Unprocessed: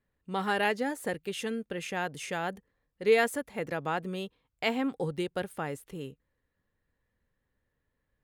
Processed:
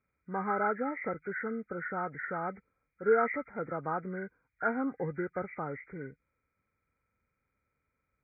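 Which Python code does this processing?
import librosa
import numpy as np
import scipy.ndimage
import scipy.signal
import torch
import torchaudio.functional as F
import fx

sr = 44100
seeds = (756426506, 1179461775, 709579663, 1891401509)

y = fx.freq_compress(x, sr, knee_hz=1200.0, ratio=4.0)
y = scipy.signal.sosfilt(scipy.signal.butter(2, 45.0, 'highpass', fs=sr, output='sos'), y)
y = F.gain(torch.from_numpy(y), -2.5).numpy()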